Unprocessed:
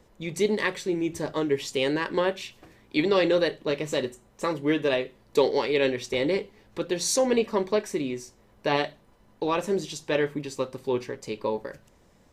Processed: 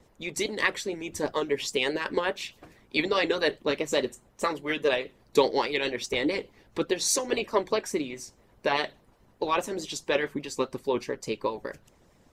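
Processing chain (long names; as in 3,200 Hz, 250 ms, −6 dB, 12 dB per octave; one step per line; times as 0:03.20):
pitch vibrato 4.8 Hz 41 cents
harmonic and percussive parts rebalanced harmonic −15 dB
level +3.5 dB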